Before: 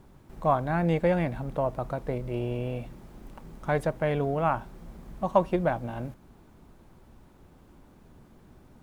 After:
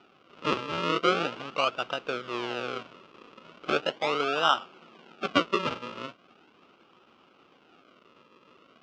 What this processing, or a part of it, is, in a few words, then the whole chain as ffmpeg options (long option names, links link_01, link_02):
circuit-bent sampling toy: -filter_complex "[0:a]asettb=1/sr,asplit=3[link_01][link_02][link_03];[link_01]atrim=end=3.844[link_04];[link_02]atrim=start=3.84:end=5.24,asetpts=PTS-STARTPTS,afade=type=in:duration=0.004:curve=qsin,afade=type=out:start_time=1.396:duration=0.004:curve=qsin,highpass=150[link_05];[link_03]atrim=start=5.236[link_06];[link_04][link_05]acrossfade=duration=0.004:curve1=hsin:curve2=qsin[link_07];[link_07][link_06]acrossfade=duration=0.004:curve1=qsin:curve2=hsin,acrusher=samples=40:mix=1:aa=0.000001:lfo=1:lforange=40:lforate=0.39,highpass=410,equalizer=frequency=630:width_type=q:width=4:gain=-4,equalizer=frequency=900:width_type=q:width=4:gain=-4,equalizer=frequency=1300:width_type=q:width=4:gain=8,equalizer=frequency=1800:width_type=q:width=4:gain=-9,equalizer=frequency=2800:width_type=q:width=4:gain=7,equalizer=frequency=4200:width_type=q:width=4:gain=-4,lowpass=frequency=4600:width=0.5412,lowpass=frequency=4600:width=1.3066,volume=3dB"